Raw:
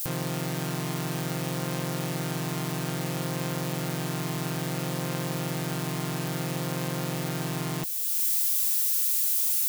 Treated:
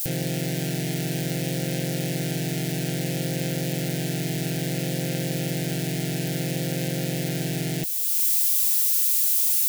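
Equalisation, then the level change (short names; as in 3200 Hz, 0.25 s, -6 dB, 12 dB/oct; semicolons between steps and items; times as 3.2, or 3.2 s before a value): Butterworth band-stop 1100 Hz, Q 1.1; +4.0 dB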